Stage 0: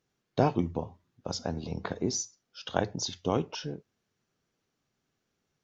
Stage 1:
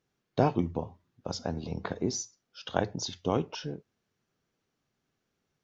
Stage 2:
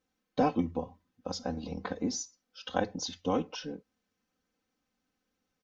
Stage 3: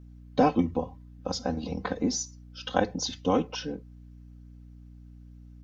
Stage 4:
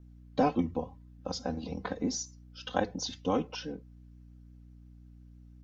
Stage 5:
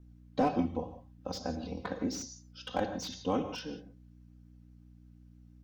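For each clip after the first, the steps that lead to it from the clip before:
treble shelf 6.7 kHz -6 dB
comb 3.9 ms, depth 96%; trim -4 dB
hum 60 Hz, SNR 17 dB; trim +5 dB
vibrato 5.8 Hz 40 cents; trim -4.5 dB
gated-style reverb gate 190 ms flat, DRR 8 dB; slew-rate limiter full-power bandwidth 74 Hz; trim -2 dB

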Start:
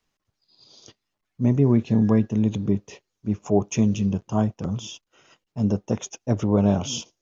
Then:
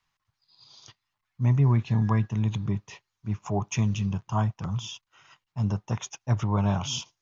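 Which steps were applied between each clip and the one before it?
ten-band graphic EQ 125 Hz +8 dB, 250 Hz -7 dB, 500 Hz -9 dB, 1 kHz +10 dB, 2 kHz +5 dB, 4 kHz +4 dB; trim -5 dB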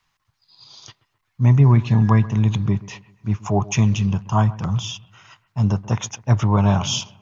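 bucket-brigade echo 131 ms, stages 2048, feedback 42%, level -19 dB; trim +8 dB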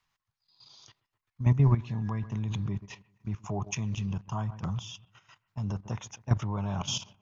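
level held to a coarse grid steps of 12 dB; trim -7 dB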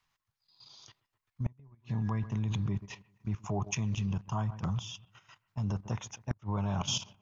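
inverted gate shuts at -18 dBFS, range -35 dB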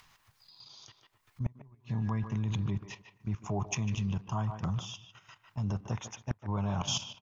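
speakerphone echo 150 ms, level -9 dB; upward compressor, threshold -48 dBFS

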